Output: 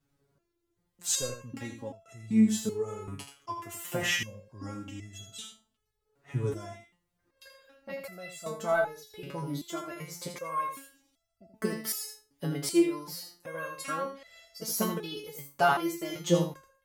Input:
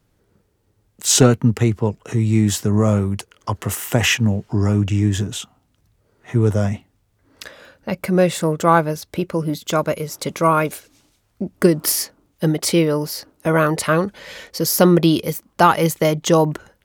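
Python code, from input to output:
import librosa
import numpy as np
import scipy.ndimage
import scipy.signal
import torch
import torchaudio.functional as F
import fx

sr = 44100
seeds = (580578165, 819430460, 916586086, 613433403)

p1 = x + fx.echo_single(x, sr, ms=81, db=-7.5, dry=0)
y = fx.resonator_held(p1, sr, hz=2.6, low_hz=140.0, high_hz=670.0)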